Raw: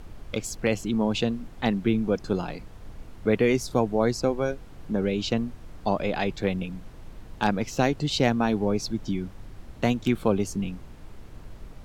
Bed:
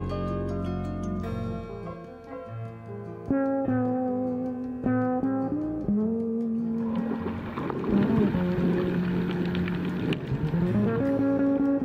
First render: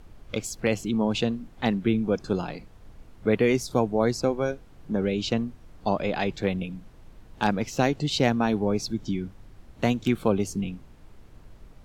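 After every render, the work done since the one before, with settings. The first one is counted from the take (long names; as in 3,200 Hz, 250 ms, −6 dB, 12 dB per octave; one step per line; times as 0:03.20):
noise reduction from a noise print 6 dB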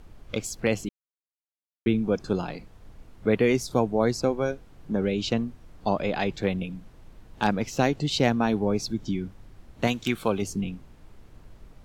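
0:00.89–0:01.86: silence
0:09.87–0:10.42: tilt shelving filter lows −5 dB, about 770 Hz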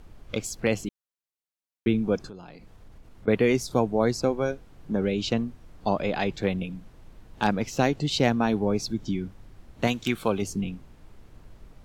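0:02.27–0:03.28: downward compressor 3 to 1, threshold −44 dBFS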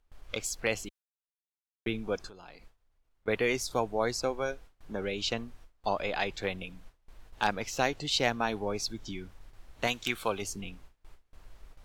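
noise gate with hold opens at −38 dBFS
parametric band 180 Hz −14 dB 2.6 octaves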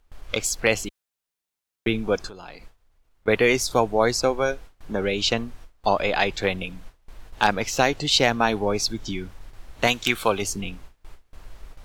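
level +9.5 dB
brickwall limiter −3 dBFS, peak gain reduction 2.5 dB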